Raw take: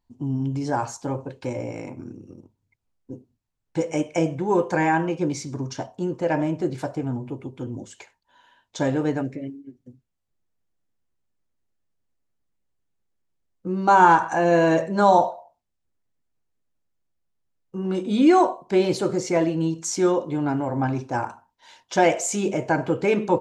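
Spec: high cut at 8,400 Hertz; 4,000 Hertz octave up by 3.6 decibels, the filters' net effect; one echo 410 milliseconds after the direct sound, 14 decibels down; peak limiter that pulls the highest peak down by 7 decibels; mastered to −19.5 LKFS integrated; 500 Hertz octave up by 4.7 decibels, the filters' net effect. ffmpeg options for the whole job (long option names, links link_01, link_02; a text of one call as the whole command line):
ffmpeg -i in.wav -af "lowpass=8400,equalizer=frequency=500:width_type=o:gain=6,equalizer=frequency=4000:width_type=o:gain=5,alimiter=limit=-9dB:level=0:latency=1,aecho=1:1:410:0.2,volume=2dB" out.wav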